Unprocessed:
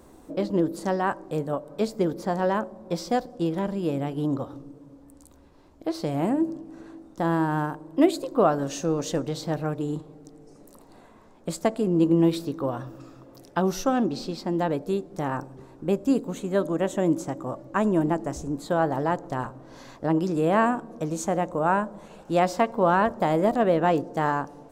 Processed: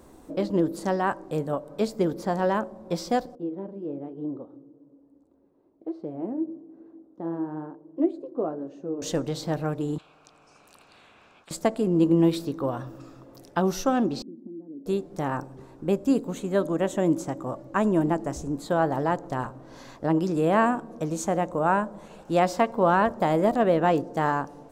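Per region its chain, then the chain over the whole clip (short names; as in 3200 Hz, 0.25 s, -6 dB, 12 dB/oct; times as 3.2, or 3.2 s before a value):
3.35–9.02 flange 1.1 Hz, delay 0.1 ms, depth 9.1 ms, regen -50% + band-pass 360 Hz, Q 1.5
9.98–11.51 vowel filter a + spectral compressor 10:1
14.22–14.86 compressor 10:1, threshold -30 dBFS + Butterworth band-pass 270 Hz, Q 2.2
whole clip: dry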